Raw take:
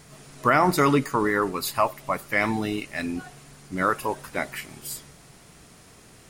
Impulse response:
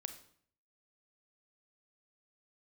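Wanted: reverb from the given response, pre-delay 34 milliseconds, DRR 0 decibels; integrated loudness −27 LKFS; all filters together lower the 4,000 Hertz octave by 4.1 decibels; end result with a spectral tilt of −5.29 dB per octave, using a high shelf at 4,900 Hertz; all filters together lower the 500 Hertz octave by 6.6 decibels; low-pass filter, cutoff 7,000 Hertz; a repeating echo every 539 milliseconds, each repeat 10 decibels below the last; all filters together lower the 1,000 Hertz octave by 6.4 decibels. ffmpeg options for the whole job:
-filter_complex "[0:a]lowpass=7000,equalizer=frequency=500:width_type=o:gain=-7,equalizer=frequency=1000:width_type=o:gain=-6.5,equalizer=frequency=4000:width_type=o:gain=-6,highshelf=frequency=4900:gain=3.5,aecho=1:1:539|1078|1617|2156:0.316|0.101|0.0324|0.0104,asplit=2[link_01][link_02];[1:a]atrim=start_sample=2205,adelay=34[link_03];[link_02][link_03]afir=irnorm=-1:irlink=0,volume=2.5dB[link_04];[link_01][link_04]amix=inputs=2:normalize=0,volume=-1dB"

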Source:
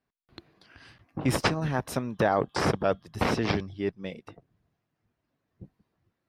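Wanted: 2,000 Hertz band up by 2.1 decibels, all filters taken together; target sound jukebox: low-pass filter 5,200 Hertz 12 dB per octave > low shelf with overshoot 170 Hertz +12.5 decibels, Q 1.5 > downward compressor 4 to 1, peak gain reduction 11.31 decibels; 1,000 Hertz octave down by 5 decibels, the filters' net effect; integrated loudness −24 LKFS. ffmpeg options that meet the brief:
ffmpeg -i in.wav -af "lowpass=5200,lowshelf=frequency=170:width_type=q:width=1.5:gain=12.5,equalizer=frequency=1000:width_type=o:gain=-8,equalizer=frequency=2000:width_type=o:gain=5.5,acompressor=threshold=-24dB:ratio=4,volume=6dB" out.wav

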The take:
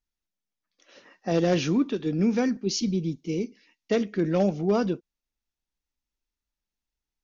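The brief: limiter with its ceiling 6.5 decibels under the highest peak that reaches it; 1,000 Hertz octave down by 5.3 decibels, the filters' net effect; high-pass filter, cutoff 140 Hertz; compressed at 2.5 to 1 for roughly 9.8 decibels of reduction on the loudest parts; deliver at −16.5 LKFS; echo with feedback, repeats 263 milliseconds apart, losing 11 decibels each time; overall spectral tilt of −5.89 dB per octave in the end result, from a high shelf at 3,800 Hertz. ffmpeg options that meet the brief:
ffmpeg -i in.wav -af "highpass=140,equalizer=frequency=1000:width_type=o:gain=-8.5,highshelf=frequency=3800:gain=-4,acompressor=threshold=-35dB:ratio=2.5,alimiter=level_in=3.5dB:limit=-24dB:level=0:latency=1,volume=-3.5dB,aecho=1:1:263|526|789:0.282|0.0789|0.0221,volume=20.5dB" out.wav

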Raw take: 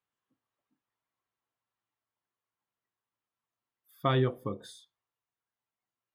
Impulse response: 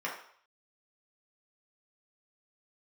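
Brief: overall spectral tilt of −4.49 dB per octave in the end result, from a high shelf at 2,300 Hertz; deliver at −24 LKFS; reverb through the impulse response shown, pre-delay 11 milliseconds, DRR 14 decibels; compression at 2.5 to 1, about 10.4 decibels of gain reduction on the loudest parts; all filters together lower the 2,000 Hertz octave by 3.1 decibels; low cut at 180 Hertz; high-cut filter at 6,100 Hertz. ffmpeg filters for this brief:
-filter_complex "[0:a]highpass=180,lowpass=6100,equalizer=frequency=2000:width_type=o:gain=-7.5,highshelf=frequency=2300:gain=7,acompressor=threshold=-40dB:ratio=2.5,asplit=2[link_01][link_02];[1:a]atrim=start_sample=2205,adelay=11[link_03];[link_02][link_03]afir=irnorm=-1:irlink=0,volume=-20dB[link_04];[link_01][link_04]amix=inputs=2:normalize=0,volume=19dB"

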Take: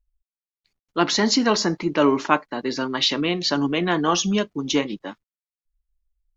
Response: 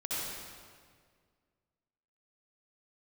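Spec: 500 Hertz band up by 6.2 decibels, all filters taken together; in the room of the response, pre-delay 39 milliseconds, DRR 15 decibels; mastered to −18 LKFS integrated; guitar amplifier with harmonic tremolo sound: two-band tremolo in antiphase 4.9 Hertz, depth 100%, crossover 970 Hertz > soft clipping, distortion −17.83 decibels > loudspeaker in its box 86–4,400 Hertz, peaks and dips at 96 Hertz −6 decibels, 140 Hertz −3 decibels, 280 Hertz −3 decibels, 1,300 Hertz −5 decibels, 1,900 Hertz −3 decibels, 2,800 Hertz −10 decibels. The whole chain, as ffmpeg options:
-filter_complex "[0:a]equalizer=frequency=500:width_type=o:gain=8.5,asplit=2[link_01][link_02];[1:a]atrim=start_sample=2205,adelay=39[link_03];[link_02][link_03]afir=irnorm=-1:irlink=0,volume=-20dB[link_04];[link_01][link_04]amix=inputs=2:normalize=0,acrossover=split=970[link_05][link_06];[link_05]aeval=exprs='val(0)*(1-1/2+1/2*cos(2*PI*4.9*n/s))':channel_layout=same[link_07];[link_06]aeval=exprs='val(0)*(1-1/2-1/2*cos(2*PI*4.9*n/s))':channel_layout=same[link_08];[link_07][link_08]amix=inputs=2:normalize=0,asoftclip=threshold=-9.5dB,highpass=86,equalizer=frequency=96:width_type=q:width=4:gain=-6,equalizer=frequency=140:width_type=q:width=4:gain=-3,equalizer=frequency=280:width_type=q:width=4:gain=-3,equalizer=frequency=1300:width_type=q:width=4:gain=-5,equalizer=frequency=1900:width_type=q:width=4:gain=-3,equalizer=frequency=2800:width_type=q:width=4:gain=-10,lowpass=frequency=4400:width=0.5412,lowpass=frequency=4400:width=1.3066,volume=8dB"

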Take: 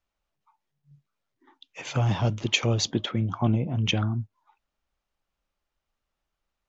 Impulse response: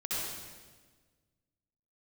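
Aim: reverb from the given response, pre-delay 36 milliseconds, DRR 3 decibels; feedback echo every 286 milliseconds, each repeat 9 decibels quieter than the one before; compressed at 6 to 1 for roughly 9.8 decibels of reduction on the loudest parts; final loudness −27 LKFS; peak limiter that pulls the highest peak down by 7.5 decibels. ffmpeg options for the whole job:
-filter_complex "[0:a]acompressor=threshold=-29dB:ratio=6,alimiter=level_in=1dB:limit=-24dB:level=0:latency=1,volume=-1dB,aecho=1:1:286|572|858|1144:0.355|0.124|0.0435|0.0152,asplit=2[link_01][link_02];[1:a]atrim=start_sample=2205,adelay=36[link_03];[link_02][link_03]afir=irnorm=-1:irlink=0,volume=-8dB[link_04];[link_01][link_04]amix=inputs=2:normalize=0,volume=5.5dB"

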